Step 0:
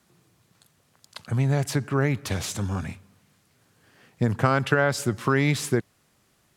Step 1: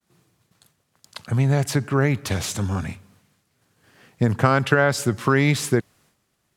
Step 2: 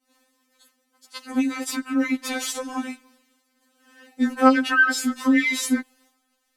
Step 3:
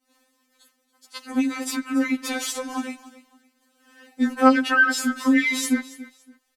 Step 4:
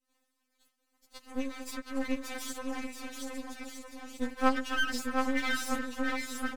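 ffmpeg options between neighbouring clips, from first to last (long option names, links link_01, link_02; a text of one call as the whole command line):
ffmpeg -i in.wav -af "agate=range=-33dB:threshold=-57dB:ratio=3:detection=peak,volume=3.5dB" out.wav
ffmpeg -i in.wav -af "afftfilt=real='re*3.46*eq(mod(b,12),0)':imag='im*3.46*eq(mod(b,12),0)':win_size=2048:overlap=0.75,volume=3dB" out.wav
ffmpeg -i in.wav -af "aecho=1:1:282|564:0.133|0.0347" out.wav
ffmpeg -i in.wav -af "aecho=1:1:720|1260|1665|1969|2197:0.631|0.398|0.251|0.158|0.1,aeval=exprs='max(val(0),0)':channel_layout=same,volume=-8.5dB" out.wav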